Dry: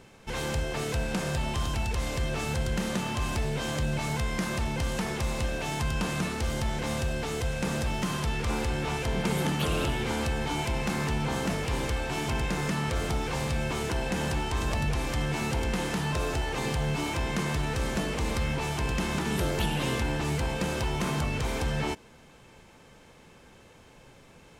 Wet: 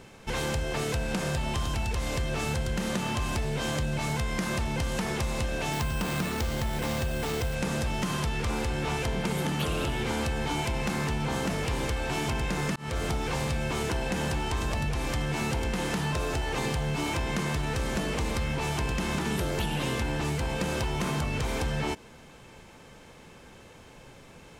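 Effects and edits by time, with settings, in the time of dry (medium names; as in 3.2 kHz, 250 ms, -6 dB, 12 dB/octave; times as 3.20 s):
5.73–7.55 s: careless resampling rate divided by 4×, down none, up hold
12.76–13.19 s: fade in equal-power
whole clip: compression, threshold -29 dBFS; trim +3.5 dB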